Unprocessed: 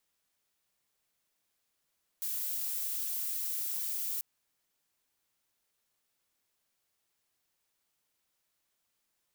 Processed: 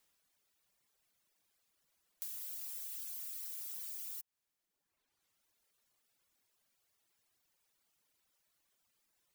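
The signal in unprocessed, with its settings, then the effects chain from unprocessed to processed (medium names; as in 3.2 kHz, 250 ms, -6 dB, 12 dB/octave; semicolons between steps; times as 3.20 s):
noise violet, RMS -35 dBFS 1.99 s
in parallel at -6 dB: hard clipper -38.5 dBFS; on the sum: reverb removal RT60 1.4 s; compression 6:1, threshold -42 dBFS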